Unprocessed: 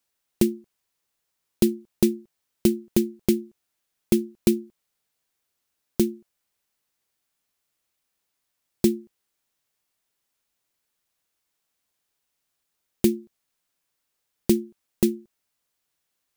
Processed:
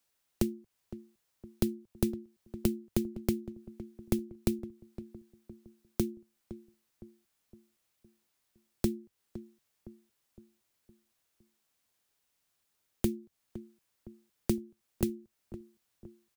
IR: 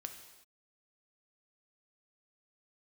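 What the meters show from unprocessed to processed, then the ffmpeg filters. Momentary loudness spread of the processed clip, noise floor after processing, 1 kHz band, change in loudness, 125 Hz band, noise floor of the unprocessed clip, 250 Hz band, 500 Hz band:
16 LU, −79 dBFS, can't be measured, −10.5 dB, −4.5 dB, −79 dBFS, −10.0 dB, −11.0 dB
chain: -filter_complex "[0:a]equalizer=frequency=98:width=4.6:gain=3.5,acrossover=split=130[link_01][link_02];[link_02]acompressor=threshold=-35dB:ratio=2.5[link_03];[link_01][link_03]amix=inputs=2:normalize=0,asplit=2[link_04][link_05];[link_05]adelay=512,lowpass=frequency=1000:poles=1,volume=-14dB,asplit=2[link_06][link_07];[link_07]adelay=512,lowpass=frequency=1000:poles=1,volume=0.5,asplit=2[link_08][link_09];[link_09]adelay=512,lowpass=frequency=1000:poles=1,volume=0.5,asplit=2[link_10][link_11];[link_11]adelay=512,lowpass=frequency=1000:poles=1,volume=0.5,asplit=2[link_12][link_13];[link_13]adelay=512,lowpass=frequency=1000:poles=1,volume=0.5[link_14];[link_06][link_08][link_10][link_12][link_14]amix=inputs=5:normalize=0[link_15];[link_04][link_15]amix=inputs=2:normalize=0"

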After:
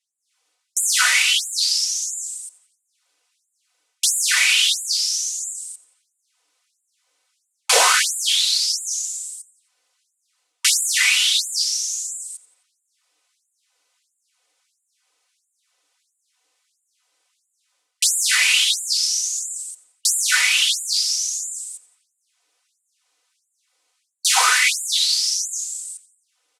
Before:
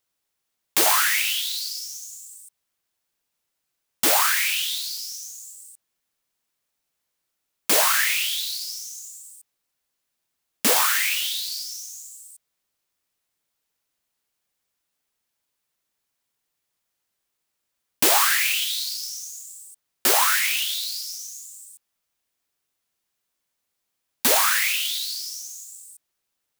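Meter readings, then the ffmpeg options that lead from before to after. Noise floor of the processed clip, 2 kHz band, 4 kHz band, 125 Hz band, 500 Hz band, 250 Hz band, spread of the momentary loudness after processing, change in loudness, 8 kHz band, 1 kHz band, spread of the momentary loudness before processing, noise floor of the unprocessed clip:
−75 dBFS, +4.5 dB, +7.0 dB, can't be measured, −3.5 dB, below −20 dB, 16 LU, +3.0 dB, +7.0 dB, 0.0 dB, 20 LU, −79 dBFS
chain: -filter_complex "[0:a]lowpass=frequency=9400:width=0.5412,lowpass=frequency=9400:width=1.3066,bandreject=frequency=1700:width=16,aecho=1:1:4:0.97,dynaudnorm=framelen=160:gausssize=3:maxgain=12dB,asplit=4[link_01][link_02][link_03][link_04];[link_02]adelay=88,afreqshift=-37,volume=-19.5dB[link_05];[link_03]adelay=176,afreqshift=-74,volume=-26.4dB[link_06];[link_04]adelay=264,afreqshift=-111,volume=-33.4dB[link_07];[link_01][link_05][link_06][link_07]amix=inputs=4:normalize=0,afftfilt=real='re*gte(b*sr/1024,260*pow(7000/260,0.5+0.5*sin(2*PI*1.5*pts/sr)))':imag='im*gte(b*sr/1024,260*pow(7000/260,0.5+0.5*sin(2*PI*1.5*pts/sr)))':win_size=1024:overlap=0.75,volume=-1dB"

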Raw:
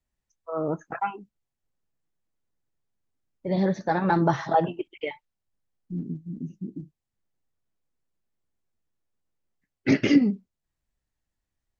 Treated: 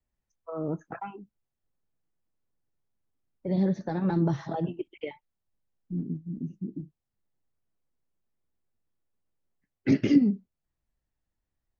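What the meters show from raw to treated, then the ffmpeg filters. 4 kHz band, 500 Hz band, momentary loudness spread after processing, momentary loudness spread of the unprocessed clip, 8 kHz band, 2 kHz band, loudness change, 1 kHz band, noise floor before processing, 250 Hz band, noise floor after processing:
−8.5 dB, −6.0 dB, 18 LU, 16 LU, can't be measured, −11.0 dB, −2.5 dB, −12.5 dB, −85 dBFS, −1.5 dB, below −85 dBFS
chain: -filter_complex "[0:a]highshelf=frequency=2200:gain=-8.5,acrossover=split=380|3000[link_01][link_02][link_03];[link_02]acompressor=threshold=-38dB:ratio=4[link_04];[link_01][link_04][link_03]amix=inputs=3:normalize=0"

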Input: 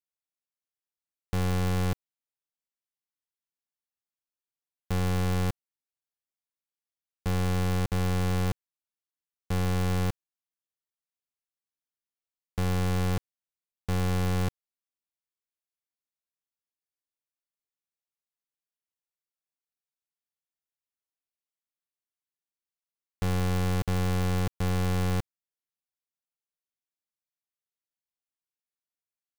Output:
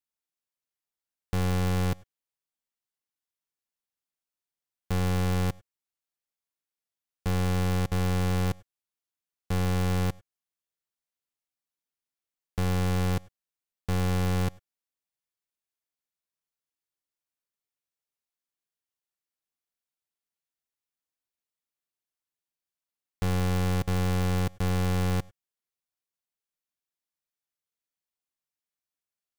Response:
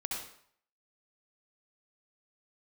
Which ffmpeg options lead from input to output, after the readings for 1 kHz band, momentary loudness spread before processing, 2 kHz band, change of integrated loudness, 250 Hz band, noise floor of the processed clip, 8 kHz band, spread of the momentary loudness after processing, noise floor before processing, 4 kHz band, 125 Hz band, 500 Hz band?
+0.5 dB, 7 LU, +0.5 dB, +0.5 dB, +1.0 dB, below −85 dBFS, +0.5 dB, 7 LU, below −85 dBFS, +0.5 dB, +0.5 dB, +0.5 dB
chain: -filter_complex "[0:a]asplit=2[link_01][link_02];[1:a]atrim=start_sample=2205,atrim=end_sample=3528,asetrate=32634,aresample=44100[link_03];[link_02][link_03]afir=irnorm=-1:irlink=0,volume=-22.5dB[link_04];[link_01][link_04]amix=inputs=2:normalize=0"

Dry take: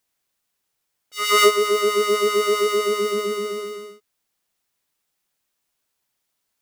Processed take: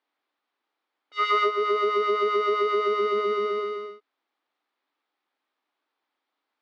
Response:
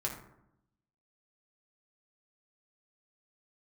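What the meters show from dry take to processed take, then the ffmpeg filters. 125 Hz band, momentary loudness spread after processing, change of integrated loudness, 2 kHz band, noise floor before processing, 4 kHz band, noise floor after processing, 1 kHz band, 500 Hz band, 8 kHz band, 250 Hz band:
can't be measured, 10 LU, −4.5 dB, −6.0 dB, −77 dBFS, −11.0 dB, −84 dBFS, −1.0 dB, −4.5 dB, below −25 dB, −6.5 dB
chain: -af "acompressor=threshold=-21dB:ratio=6,highpass=frequency=270:width=0.5412,highpass=frequency=270:width=1.3066,equalizer=frequency=290:width_type=q:width=4:gain=7,equalizer=frequency=830:width_type=q:width=4:gain=5,equalizer=frequency=1200:width_type=q:width=4:gain=5,equalizer=frequency=2800:width_type=q:width=4:gain=-4,lowpass=frequency=3600:width=0.5412,lowpass=frequency=3600:width=1.3066"

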